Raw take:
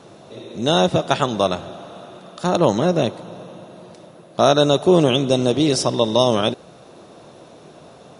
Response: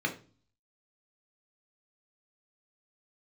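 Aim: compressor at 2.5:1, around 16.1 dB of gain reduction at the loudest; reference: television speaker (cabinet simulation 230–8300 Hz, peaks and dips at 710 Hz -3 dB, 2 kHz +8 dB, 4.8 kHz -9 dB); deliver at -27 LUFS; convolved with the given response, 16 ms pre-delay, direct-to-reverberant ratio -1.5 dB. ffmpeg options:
-filter_complex "[0:a]acompressor=threshold=0.0178:ratio=2.5,asplit=2[s0][s1];[1:a]atrim=start_sample=2205,adelay=16[s2];[s1][s2]afir=irnorm=-1:irlink=0,volume=0.501[s3];[s0][s3]amix=inputs=2:normalize=0,highpass=f=230:w=0.5412,highpass=f=230:w=1.3066,equalizer=f=710:t=q:w=4:g=-3,equalizer=f=2000:t=q:w=4:g=8,equalizer=f=4800:t=q:w=4:g=-9,lowpass=f=8300:w=0.5412,lowpass=f=8300:w=1.3066,volume=1.68"

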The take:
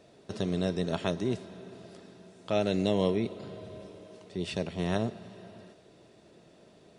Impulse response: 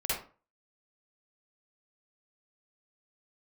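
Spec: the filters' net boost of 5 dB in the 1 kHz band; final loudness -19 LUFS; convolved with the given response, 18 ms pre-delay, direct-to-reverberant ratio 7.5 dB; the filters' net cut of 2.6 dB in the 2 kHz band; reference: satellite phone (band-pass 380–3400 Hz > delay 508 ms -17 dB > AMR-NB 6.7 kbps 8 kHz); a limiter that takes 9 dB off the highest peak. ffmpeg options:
-filter_complex "[0:a]equalizer=f=1000:t=o:g=8.5,equalizer=f=2000:t=o:g=-5.5,alimiter=limit=0.0891:level=0:latency=1,asplit=2[s0][s1];[1:a]atrim=start_sample=2205,adelay=18[s2];[s1][s2]afir=irnorm=-1:irlink=0,volume=0.188[s3];[s0][s3]amix=inputs=2:normalize=0,highpass=380,lowpass=3400,aecho=1:1:508:0.141,volume=10" -ar 8000 -c:a libopencore_amrnb -b:a 6700

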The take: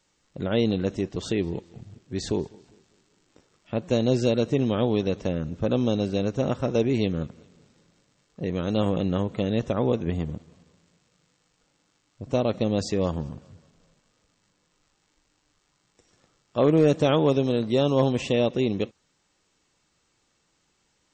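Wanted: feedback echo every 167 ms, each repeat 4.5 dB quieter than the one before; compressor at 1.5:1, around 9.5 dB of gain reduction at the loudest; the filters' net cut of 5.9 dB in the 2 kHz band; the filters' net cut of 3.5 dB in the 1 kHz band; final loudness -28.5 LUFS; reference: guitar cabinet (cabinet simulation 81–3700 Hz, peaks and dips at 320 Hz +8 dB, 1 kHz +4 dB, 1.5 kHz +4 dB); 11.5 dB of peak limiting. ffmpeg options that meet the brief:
-af "equalizer=f=1000:t=o:g=-5.5,equalizer=f=2000:t=o:g=-9,acompressor=threshold=0.00631:ratio=1.5,alimiter=level_in=2.37:limit=0.0631:level=0:latency=1,volume=0.422,highpass=81,equalizer=f=320:t=q:w=4:g=8,equalizer=f=1000:t=q:w=4:g=4,equalizer=f=1500:t=q:w=4:g=4,lowpass=f=3700:w=0.5412,lowpass=f=3700:w=1.3066,aecho=1:1:167|334|501|668|835|1002|1169|1336|1503:0.596|0.357|0.214|0.129|0.0772|0.0463|0.0278|0.0167|0.01,volume=3.16"

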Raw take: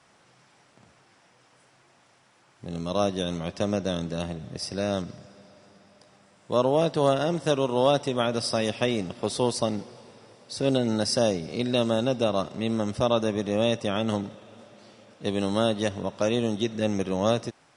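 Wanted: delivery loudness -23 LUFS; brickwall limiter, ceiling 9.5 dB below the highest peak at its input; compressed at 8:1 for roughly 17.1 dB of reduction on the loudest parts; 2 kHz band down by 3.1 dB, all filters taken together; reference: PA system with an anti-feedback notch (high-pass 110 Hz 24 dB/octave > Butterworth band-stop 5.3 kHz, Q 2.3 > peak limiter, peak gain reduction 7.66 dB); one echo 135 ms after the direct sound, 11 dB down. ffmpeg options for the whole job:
-af "equalizer=f=2000:t=o:g=-4.5,acompressor=threshold=0.0158:ratio=8,alimiter=level_in=2.24:limit=0.0631:level=0:latency=1,volume=0.447,highpass=f=110:w=0.5412,highpass=f=110:w=1.3066,asuperstop=centerf=5300:order=8:qfactor=2.3,aecho=1:1:135:0.282,volume=16.8,alimiter=limit=0.224:level=0:latency=1"

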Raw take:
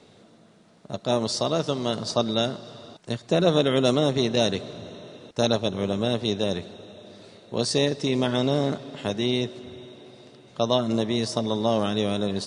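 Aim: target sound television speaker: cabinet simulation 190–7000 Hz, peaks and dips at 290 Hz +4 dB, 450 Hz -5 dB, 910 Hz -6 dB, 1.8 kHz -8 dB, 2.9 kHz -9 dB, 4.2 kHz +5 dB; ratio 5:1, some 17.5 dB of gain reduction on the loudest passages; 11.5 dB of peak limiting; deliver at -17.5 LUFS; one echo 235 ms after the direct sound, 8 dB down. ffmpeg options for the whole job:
-af "acompressor=threshold=0.0141:ratio=5,alimiter=level_in=2:limit=0.0631:level=0:latency=1,volume=0.501,highpass=f=190:w=0.5412,highpass=f=190:w=1.3066,equalizer=f=290:t=q:w=4:g=4,equalizer=f=450:t=q:w=4:g=-5,equalizer=f=910:t=q:w=4:g=-6,equalizer=f=1800:t=q:w=4:g=-8,equalizer=f=2900:t=q:w=4:g=-9,equalizer=f=4200:t=q:w=4:g=5,lowpass=f=7000:w=0.5412,lowpass=f=7000:w=1.3066,aecho=1:1:235:0.398,volume=18.8"

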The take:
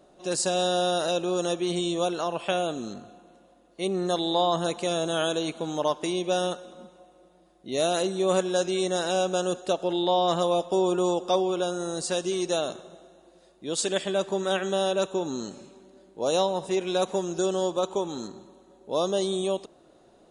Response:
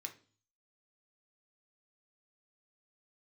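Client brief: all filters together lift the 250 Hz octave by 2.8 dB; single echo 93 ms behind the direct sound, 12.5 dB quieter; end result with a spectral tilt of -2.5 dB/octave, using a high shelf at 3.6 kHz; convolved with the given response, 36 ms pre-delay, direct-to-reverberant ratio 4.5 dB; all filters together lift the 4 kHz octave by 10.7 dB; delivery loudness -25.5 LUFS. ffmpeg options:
-filter_complex "[0:a]equalizer=f=250:t=o:g=5,highshelf=f=3600:g=8,equalizer=f=4000:t=o:g=7.5,aecho=1:1:93:0.237,asplit=2[s0][s1];[1:a]atrim=start_sample=2205,adelay=36[s2];[s1][s2]afir=irnorm=-1:irlink=0,volume=0.841[s3];[s0][s3]amix=inputs=2:normalize=0,volume=0.596"

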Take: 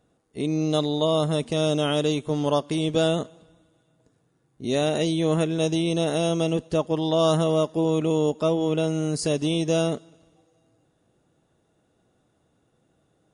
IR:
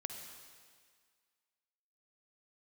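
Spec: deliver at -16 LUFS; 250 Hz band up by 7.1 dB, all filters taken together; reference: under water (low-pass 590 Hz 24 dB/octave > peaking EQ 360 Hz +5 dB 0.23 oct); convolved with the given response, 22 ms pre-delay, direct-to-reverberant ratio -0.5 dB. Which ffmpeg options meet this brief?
-filter_complex "[0:a]equalizer=f=250:t=o:g=9,asplit=2[s0][s1];[1:a]atrim=start_sample=2205,adelay=22[s2];[s1][s2]afir=irnorm=-1:irlink=0,volume=1.26[s3];[s0][s3]amix=inputs=2:normalize=0,lowpass=f=590:w=0.5412,lowpass=f=590:w=1.3066,equalizer=f=360:t=o:w=0.23:g=5,volume=1.12"

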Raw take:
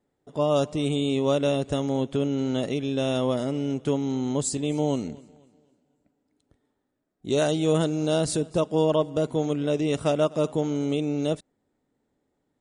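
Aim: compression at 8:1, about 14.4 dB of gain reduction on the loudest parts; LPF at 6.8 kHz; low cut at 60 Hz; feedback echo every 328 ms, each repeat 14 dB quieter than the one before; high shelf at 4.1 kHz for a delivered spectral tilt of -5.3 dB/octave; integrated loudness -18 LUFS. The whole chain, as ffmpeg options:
-af "highpass=60,lowpass=6800,highshelf=f=4100:g=8.5,acompressor=threshold=0.0224:ratio=8,aecho=1:1:328|656:0.2|0.0399,volume=8.91"

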